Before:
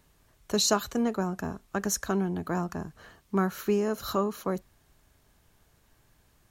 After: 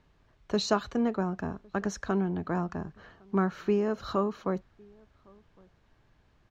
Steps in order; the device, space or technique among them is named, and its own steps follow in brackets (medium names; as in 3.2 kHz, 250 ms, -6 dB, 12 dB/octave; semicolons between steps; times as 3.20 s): shout across a valley (distance through air 180 m; echo from a far wall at 190 m, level -28 dB)